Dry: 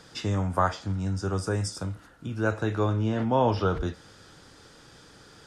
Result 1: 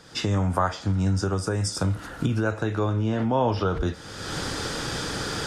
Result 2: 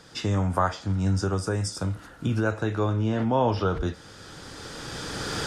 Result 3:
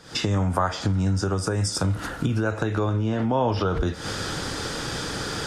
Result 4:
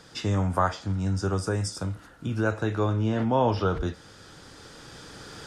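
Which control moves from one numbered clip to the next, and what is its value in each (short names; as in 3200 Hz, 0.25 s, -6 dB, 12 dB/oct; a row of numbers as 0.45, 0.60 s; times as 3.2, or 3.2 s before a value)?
recorder AGC, rising by: 36, 13, 89, 5.4 dB/s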